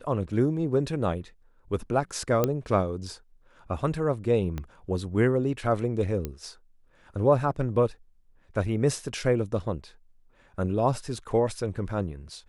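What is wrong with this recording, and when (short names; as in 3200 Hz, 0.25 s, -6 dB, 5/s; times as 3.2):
2.44 pop -10 dBFS
4.58 pop -20 dBFS
6.25 pop -17 dBFS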